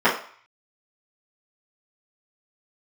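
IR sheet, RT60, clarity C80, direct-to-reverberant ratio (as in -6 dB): 0.50 s, 12.0 dB, -12.5 dB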